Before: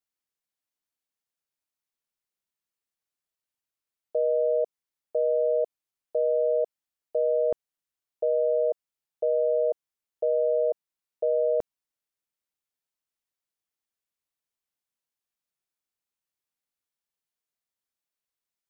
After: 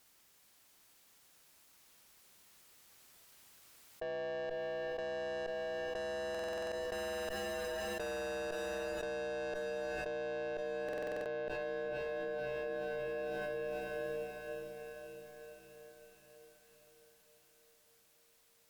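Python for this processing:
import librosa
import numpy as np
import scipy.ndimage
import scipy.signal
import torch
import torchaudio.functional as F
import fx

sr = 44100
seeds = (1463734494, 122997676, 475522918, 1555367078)

p1 = fx.doppler_pass(x, sr, speed_mps=11, closest_m=3.0, pass_at_s=7.46)
p2 = fx.tube_stage(p1, sr, drive_db=52.0, bias=0.25)
p3 = p2 + fx.echo_diffused(p2, sr, ms=460, feedback_pct=57, wet_db=-15.0, dry=0)
p4 = fx.buffer_glitch(p3, sr, at_s=(6.3, 10.84), block=2048, repeats=8)
p5 = fx.env_flatten(p4, sr, amount_pct=100)
y = F.gain(torch.from_numpy(p5), 13.0).numpy()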